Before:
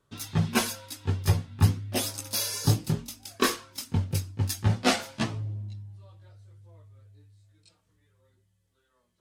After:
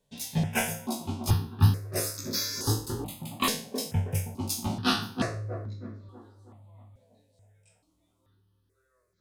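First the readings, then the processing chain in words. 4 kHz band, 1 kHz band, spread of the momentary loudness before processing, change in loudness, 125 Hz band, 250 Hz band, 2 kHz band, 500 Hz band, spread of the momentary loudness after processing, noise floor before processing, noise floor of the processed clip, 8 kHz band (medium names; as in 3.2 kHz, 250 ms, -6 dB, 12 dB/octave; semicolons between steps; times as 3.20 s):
-0.5 dB, -0.5 dB, 11 LU, -1.5 dB, -1.5 dB, -1.0 dB, -1.5 dB, -1.5 dB, 12 LU, -73 dBFS, -73 dBFS, -1.0 dB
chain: spectral sustain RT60 0.41 s; feedback echo behind a band-pass 320 ms, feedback 48%, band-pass 420 Hz, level -4.5 dB; stepped phaser 2.3 Hz 340–2900 Hz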